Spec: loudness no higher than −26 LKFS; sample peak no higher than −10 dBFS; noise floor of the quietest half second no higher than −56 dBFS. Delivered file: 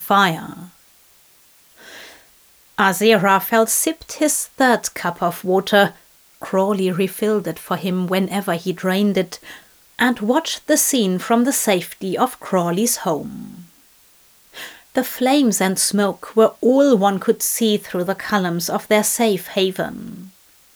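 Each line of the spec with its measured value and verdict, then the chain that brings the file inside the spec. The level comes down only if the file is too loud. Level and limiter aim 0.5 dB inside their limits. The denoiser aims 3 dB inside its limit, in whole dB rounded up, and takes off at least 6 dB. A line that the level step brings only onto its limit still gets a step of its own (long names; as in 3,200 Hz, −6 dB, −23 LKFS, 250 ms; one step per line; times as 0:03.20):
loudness −18.0 LKFS: out of spec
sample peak −3.0 dBFS: out of spec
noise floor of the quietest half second −52 dBFS: out of spec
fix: level −8.5 dB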